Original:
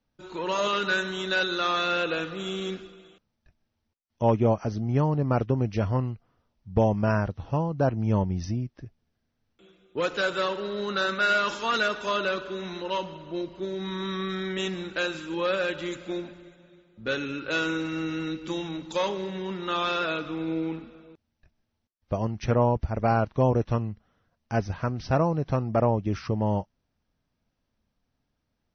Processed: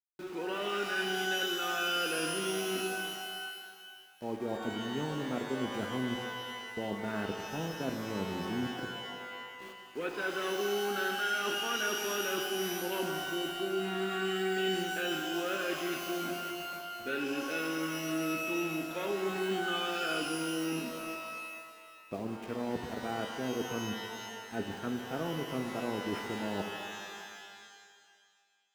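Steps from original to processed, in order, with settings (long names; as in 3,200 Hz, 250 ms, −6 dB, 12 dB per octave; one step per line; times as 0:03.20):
loudspeaker in its box 230–2,900 Hz, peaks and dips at 250 Hz +5 dB, 380 Hz +4 dB, 580 Hz −7 dB, 1,000 Hz −10 dB
reversed playback
downward compressor 6 to 1, threshold −39 dBFS, peak gain reduction 19.5 dB
reversed playback
centre clipping without the shift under −53 dBFS
reverb with rising layers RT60 1.9 s, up +12 semitones, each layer −2 dB, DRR 5 dB
level +5 dB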